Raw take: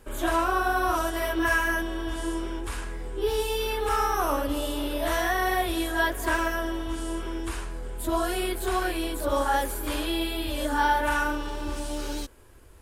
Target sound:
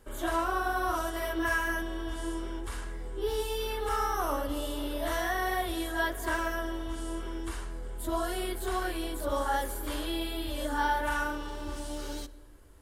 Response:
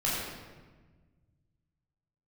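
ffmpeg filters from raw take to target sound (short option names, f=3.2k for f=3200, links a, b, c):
-filter_complex "[0:a]bandreject=f=2.5k:w=9.9,asplit=2[a][b];[1:a]atrim=start_sample=2205[c];[b][c]afir=irnorm=-1:irlink=0,volume=-26dB[d];[a][d]amix=inputs=2:normalize=0,volume=-5.5dB"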